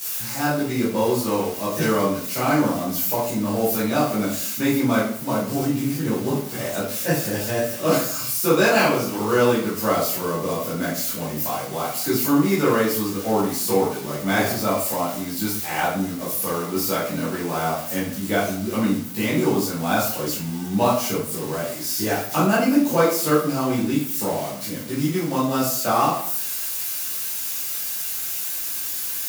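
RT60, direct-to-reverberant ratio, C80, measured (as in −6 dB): 0.55 s, −10.0 dB, 7.5 dB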